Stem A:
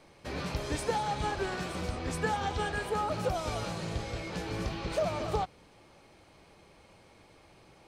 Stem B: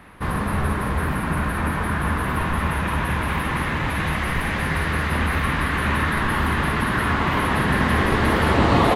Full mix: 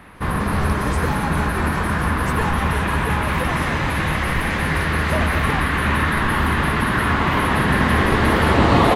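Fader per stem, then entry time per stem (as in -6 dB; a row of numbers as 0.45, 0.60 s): +2.5, +2.5 dB; 0.15, 0.00 s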